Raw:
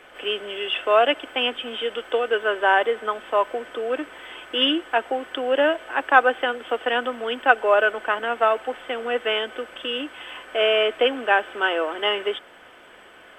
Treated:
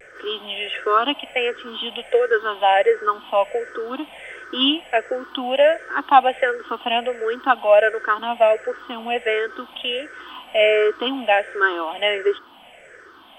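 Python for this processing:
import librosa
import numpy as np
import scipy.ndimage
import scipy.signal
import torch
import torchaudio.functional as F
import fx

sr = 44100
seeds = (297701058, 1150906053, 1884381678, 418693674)

y = fx.spec_ripple(x, sr, per_octave=0.52, drift_hz=-1.4, depth_db=18)
y = fx.vibrato(y, sr, rate_hz=0.54, depth_cents=34.0)
y = y * librosa.db_to_amplitude(-2.0)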